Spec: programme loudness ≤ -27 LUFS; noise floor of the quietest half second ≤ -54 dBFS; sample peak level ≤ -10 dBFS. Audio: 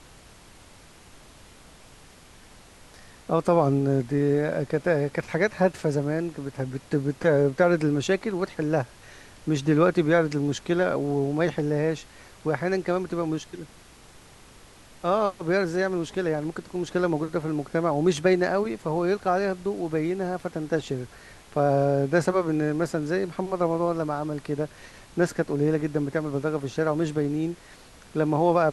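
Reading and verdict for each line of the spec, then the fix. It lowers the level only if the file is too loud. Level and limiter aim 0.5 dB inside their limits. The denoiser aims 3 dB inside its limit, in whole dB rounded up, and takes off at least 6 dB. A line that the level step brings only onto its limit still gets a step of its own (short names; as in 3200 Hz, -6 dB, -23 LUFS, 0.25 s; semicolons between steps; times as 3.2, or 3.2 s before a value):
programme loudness -25.5 LUFS: fail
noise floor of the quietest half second -50 dBFS: fail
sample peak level -8.0 dBFS: fail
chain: denoiser 6 dB, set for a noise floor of -50 dBFS; gain -2 dB; limiter -10.5 dBFS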